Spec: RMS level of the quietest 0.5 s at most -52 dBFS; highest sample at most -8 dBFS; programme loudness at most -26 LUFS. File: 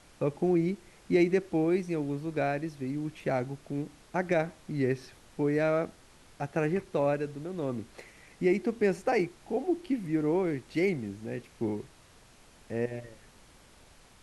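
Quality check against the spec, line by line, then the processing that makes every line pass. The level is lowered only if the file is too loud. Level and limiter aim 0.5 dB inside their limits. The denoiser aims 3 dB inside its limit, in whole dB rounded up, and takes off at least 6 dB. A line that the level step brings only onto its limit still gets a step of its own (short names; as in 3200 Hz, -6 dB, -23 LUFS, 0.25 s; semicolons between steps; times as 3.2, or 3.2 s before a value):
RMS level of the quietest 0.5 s -57 dBFS: OK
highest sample -14.0 dBFS: OK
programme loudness -31.0 LUFS: OK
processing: none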